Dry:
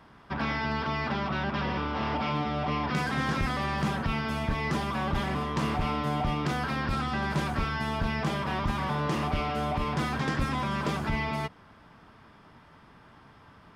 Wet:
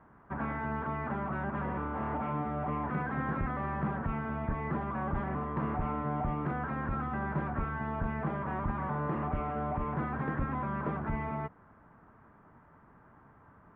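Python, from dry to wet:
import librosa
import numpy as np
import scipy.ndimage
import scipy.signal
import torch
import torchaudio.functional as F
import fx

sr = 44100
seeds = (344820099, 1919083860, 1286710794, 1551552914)

y = scipy.signal.sosfilt(scipy.signal.butter(4, 1700.0, 'lowpass', fs=sr, output='sos'), x)
y = y * 10.0 ** (-4.0 / 20.0)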